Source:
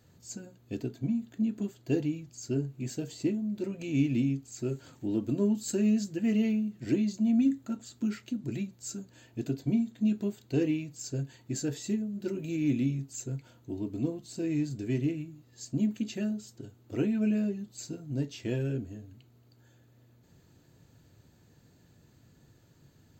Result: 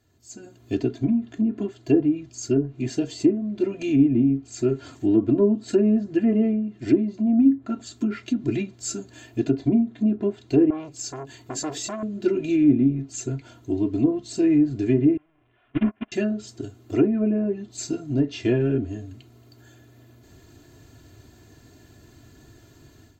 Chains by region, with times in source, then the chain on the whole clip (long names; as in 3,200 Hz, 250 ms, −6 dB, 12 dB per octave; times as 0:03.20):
0:10.70–0:12.03: downward compressor 3 to 1, threshold −35 dBFS + saturating transformer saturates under 1,100 Hz
0:15.17–0:16.12: linear delta modulator 16 kbit/s, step −31.5 dBFS + noise gate −28 dBFS, range −36 dB
whole clip: treble cut that deepens with the level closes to 980 Hz, closed at −24.5 dBFS; comb filter 2.9 ms, depth 64%; automatic gain control gain up to 15 dB; level −5 dB